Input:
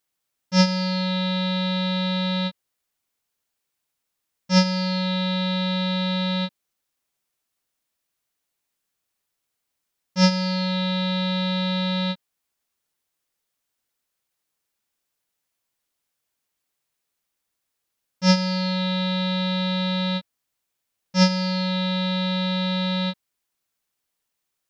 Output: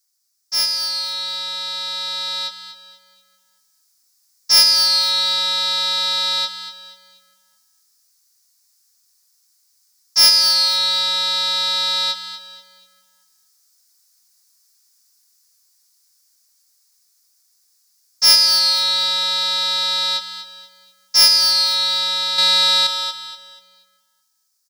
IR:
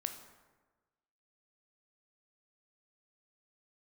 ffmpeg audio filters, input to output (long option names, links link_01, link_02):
-filter_complex "[0:a]highshelf=frequency=3900:width_type=q:width=3:gain=9,asoftclip=type=tanh:threshold=-14.5dB,aeval=exprs='0.188*(cos(1*acos(clip(val(0)/0.188,-1,1)))-cos(1*PI/2))+0.00133*(cos(6*acos(clip(val(0)/0.188,-1,1)))-cos(6*PI/2))+0.00119*(cos(7*acos(clip(val(0)/0.188,-1,1)))-cos(7*PI/2))':channel_layout=same,asettb=1/sr,asplit=3[link_01][link_02][link_03];[link_01]atrim=end=22.384[link_04];[link_02]atrim=start=22.38:end=22.87,asetpts=PTS-STARTPTS,afade=type=in:duration=0.004:curve=qsin,afade=type=out:start_time=0.486:duration=0.004:curve=qsin,acontrast=83[link_05];[link_03]atrim=start=22.866[link_06];[link_04][link_05]acrossfade=duration=0.004:curve1=hsin:curve2=qsin[link_07];[link_07][link_06]acrossfade=duration=0.004:curve1=qsin:curve2=hsin,highpass=1200,asplit=2[link_08][link_09];[link_09]adelay=220,lowpass=frequency=4800:poles=1,volume=-16.5dB,asplit=2[link_10][link_11];[link_11]adelay=220,lowpass=frequency=4800:poles=1,volume=0.54,asplit=2[link_12][link_13];[link_13]adelay=220,lowpass=frequency=4800:poles=1,volume=0.54,asplit=2[link_14][link_15];[link_15]adelay=220,lowpass=frequency=4800:poles=1,volume=0.54,asplit=2[link_16][link_17];[link_17]adelay=220,lowpass=frequency=4800:poles=1,volume=0.54[link_18];[link_10][link_12][link_14][link_16][link_18]amix=inputs=5:normalize=0[link_19];[link_08][link_19]amix=inputs=2:normalize=0,dynaudnorm=framelen=190:gausssize=31:maxgain=10dB,asplit=2[link_20][link_21];[link_21]aecho=0:1:241|482|723:0.266|0.0878|0.029[link_22];[link_20][link_22]amix=inputs=2:normalize=0,volume=1dB"